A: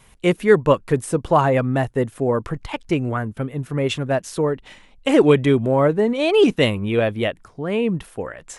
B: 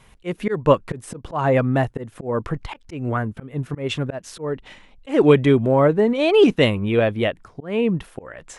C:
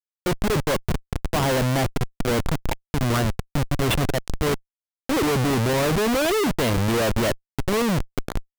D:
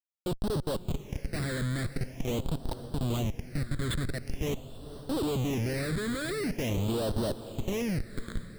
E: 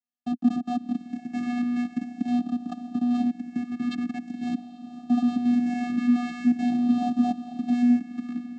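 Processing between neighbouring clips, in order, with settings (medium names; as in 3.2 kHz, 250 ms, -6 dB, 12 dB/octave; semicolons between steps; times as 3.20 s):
treble shelf 7.4 kHz -10 dB; slow attack 191 ms; trim +1 dB
Schmitt trigger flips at -27 dBFS
echo that smears into a reverb 483 ms, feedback 58%, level -13.5 dB; phase shifter stages 8, 0.45 Hz, lowest notch 800–2200 Hz; trim -8.5 dB
vocoder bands 8, square 243 Hz; trim +8 dB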